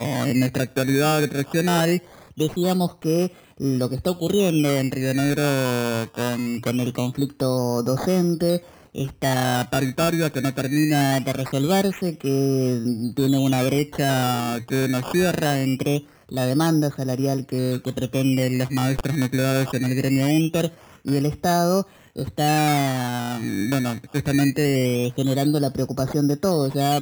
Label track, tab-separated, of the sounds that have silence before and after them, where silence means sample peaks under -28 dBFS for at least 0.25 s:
2.390000	3.270000	sound
3.600000	8.580000	sound
8.950000	15.990000	sound
16.320000	20.680000	sound
21.070000	21.820000	sound